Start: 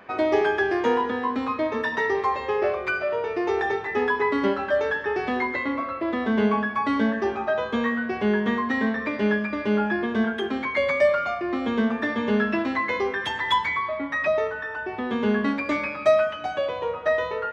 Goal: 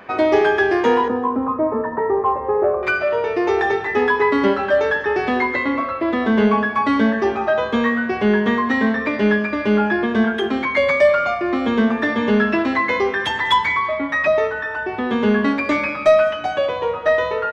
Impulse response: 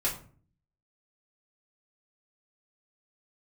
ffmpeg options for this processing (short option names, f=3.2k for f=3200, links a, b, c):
-filter_complex "[0:a]asettb=1/sr,asplit=3[a][b][c];[a]atrim=end=1.084[d];[b]atrim=start=1.08:end=2.83,asetpts=PTS-STARTPTS,afade=t=in:d=0.004:c=qsin,afade=t=out:st=1.746:d=0.004:c=qsin,lowpass=f=1.2k:w=0.5412,lowpass=f=1.2k:w=1.3066[e];[c]atrim=start=2.826[f];[d][e]acrossfade=d=0.004:c1=hsin:c2=qsin[g];[g][f]acrossfade=d=0.004:c1=qsin:c2=hsin,asoftclip=type=tanh:threshold=-9.5dB,aecho=1:1:194|388|582:0.112|0.037|0.0122,volume=6.5dB"